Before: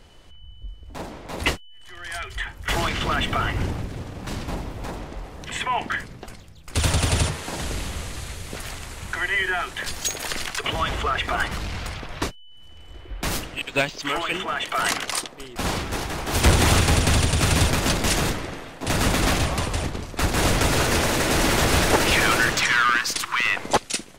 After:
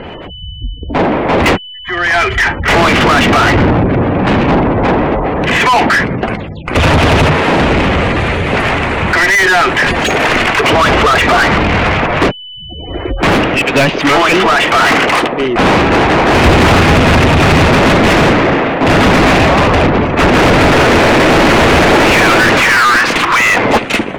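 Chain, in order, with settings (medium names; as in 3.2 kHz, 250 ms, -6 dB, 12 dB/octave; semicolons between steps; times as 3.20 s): spectral gate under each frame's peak -30 dB strong; FFT filter 240 Hz 0 dB, 1.4 kHz -11 dB, 2.5 kHz -10 dB, 5.1 kHz -29 dB; overdrive pedal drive 37 dB, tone 3.4 kHz, clips at -9.5 dBFS; trim +8.5 dB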